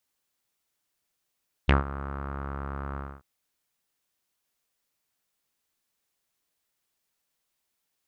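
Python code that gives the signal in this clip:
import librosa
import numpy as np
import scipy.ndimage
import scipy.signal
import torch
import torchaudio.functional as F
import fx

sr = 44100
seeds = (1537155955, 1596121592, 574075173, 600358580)

y = fx.sub_voice(sr, note=37, wave='saw', cutoff_hz=1300.0, q=4.6, env_oct=1.5, env_s=0.06, attack_ms=12.0, decay_s=0.14, sustain_db=-17.5, release_s=0.25, note_s=1.29, slope=12)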